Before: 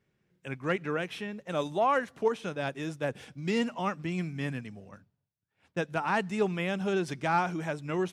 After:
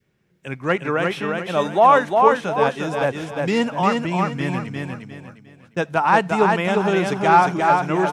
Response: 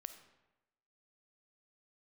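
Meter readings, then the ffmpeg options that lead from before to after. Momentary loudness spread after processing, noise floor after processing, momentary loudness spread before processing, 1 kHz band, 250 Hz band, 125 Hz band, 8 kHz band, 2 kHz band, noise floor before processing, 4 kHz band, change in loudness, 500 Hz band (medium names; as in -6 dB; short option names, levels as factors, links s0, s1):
13 LU, -62 dBFS, 10 LU, +15.0 dB, +9.5 dB, +9.0 dB, +9.0 dB, +11.0 dB, -82 dBFS, +9.5 dB, +12.5 dB, +11.5 dB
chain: -filter_complex "[0:a]adynamicequalizer=threshold=0.00891:dfrequency=900:dqfactor=1.1:tfrequency=900:tqfactor=1.1:attack=5:release=100:ratio=0.375:range=3.5:mode=boostabove:tftype=bell,aecho=1:1:354|708|1062|1416:0.668|0.221|0.0728|0.024,asplit=2[s0][s1];[1:a]atrim=start_sample=2205,atrim=end_sample=3528[s2];[s1][s2]afir=irnorm=-1:irlink=0,volume=0.316[s3];[s0][s3]amix=inputs=2:normalize=0,volume=2"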